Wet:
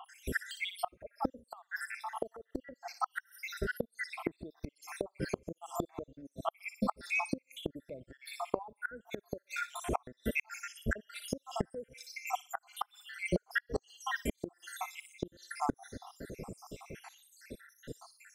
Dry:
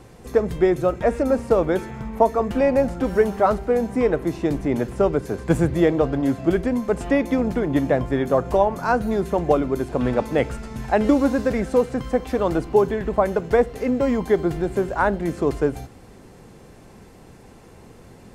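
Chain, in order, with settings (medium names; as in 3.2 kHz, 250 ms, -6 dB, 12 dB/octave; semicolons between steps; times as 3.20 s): random holes in the spectrogram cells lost 84%; bass shelf 250 Hz -5.5 dB; on a send: feedback echo behind a high-pass 60 ms, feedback 38%, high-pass 3.4 kHz, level -6 dB; on the sum: inverted gate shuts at -26 dBFS, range -31 dB; trim +7 dB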